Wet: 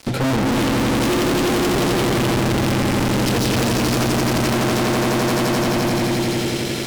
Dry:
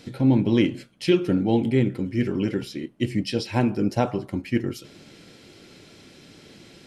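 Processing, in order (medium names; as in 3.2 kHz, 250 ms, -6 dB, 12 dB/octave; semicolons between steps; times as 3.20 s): echo with a slow build-up 86 ms, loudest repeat 5, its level -3.5 dB; Chebyshev shaper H 4 -12 dB, 5 -31 dB, 7 -27 dB, 8 -19 dB, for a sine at -6.5 dBFS; fuzz box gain 41 dB, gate -45 dBFS; trim -4 dB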